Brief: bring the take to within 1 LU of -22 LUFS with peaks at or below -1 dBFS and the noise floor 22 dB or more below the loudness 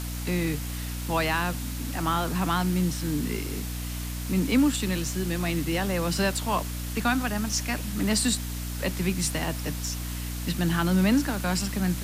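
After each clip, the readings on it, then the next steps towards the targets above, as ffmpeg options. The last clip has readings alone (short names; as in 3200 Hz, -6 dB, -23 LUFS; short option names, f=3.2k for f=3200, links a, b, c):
hum 60 Hz; harmonics up to 300 Hz; hum level -30 dBFS; noise floor -33 dBFS; noise floor target -49 dBFS; loudness -27.0 LUFS; peak -12.0 dBFS; loudness target -22.0 LUFS
-> -af "bandreject=f=60:t=h:w=4,bandreject=f=120:t=h:w=4,bandreject=f=180:t=h:w=4,bandreject=f=240:t=h:w=4,bandreject=f=300:t=h:w=4"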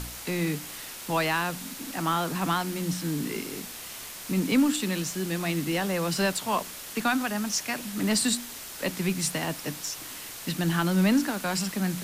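hum none; noise floor -41 dBFS; noise floor target -50 dBFS
-> -af "afftdn=nr=9:nf=-41"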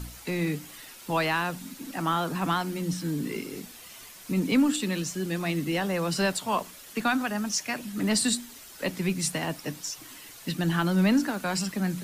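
noise floor -47 dBFS; noise floor target -50 dBFS
-> -af "afftdn=nr=6:nf=-47"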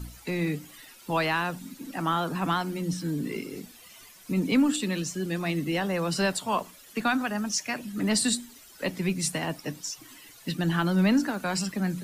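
noise floor -51 dBFS; loudness -28.0 LUFS; peak -13.0 dBFS; loudness target -22.0 LUFS
-> -af "volume=6dB"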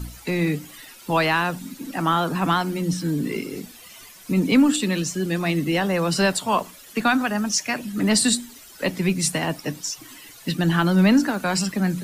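loudness -22.0 LUFS; peak -7.0 dBFS; noise floor -45 dBFS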